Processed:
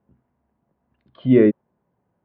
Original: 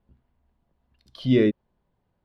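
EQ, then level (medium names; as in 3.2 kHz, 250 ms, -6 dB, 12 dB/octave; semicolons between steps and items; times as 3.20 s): dynamic bell 900 Hz, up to +4 dB, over -32 dBFS, Q 0.8; band-pass 130–2300 Hz; distance through air 380 m; +5.5 dB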